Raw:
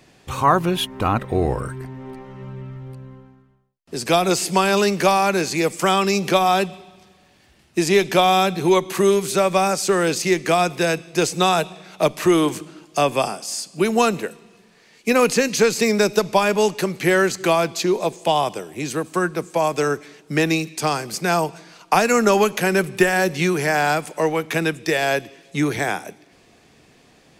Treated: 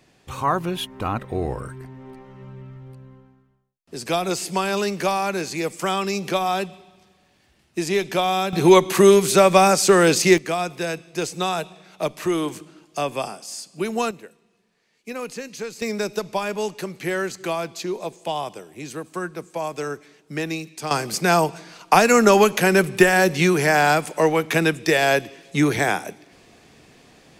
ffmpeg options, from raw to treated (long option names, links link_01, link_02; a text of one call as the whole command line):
ffmpeg -i in.wav -af "asetnsamples=nb_out_samples=441:pad=0,asendcmd='8.53 volume volume 4dB;10.38 volume volume -6.5dB;14.11 volume volume -15dB;15.82 volume volume -8dB;20.91 volume volume 2dB',volume=-5.5dB" out.wav